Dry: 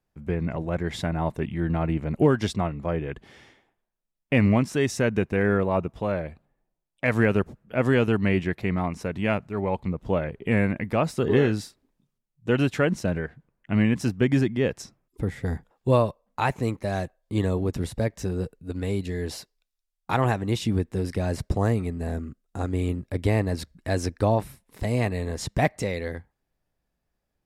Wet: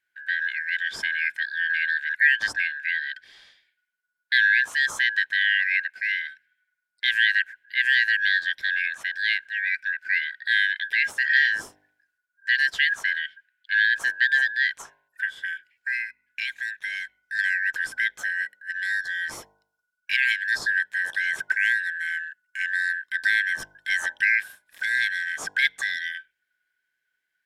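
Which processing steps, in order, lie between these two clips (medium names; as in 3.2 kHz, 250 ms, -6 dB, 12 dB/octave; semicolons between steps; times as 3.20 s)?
four frequency bands reordered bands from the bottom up 4123; de-hum 50.29 Hz, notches 21; 15.25–17.39 s: compression 2.5:1, threshold -29 dBFS, peak gain reduction 10 dB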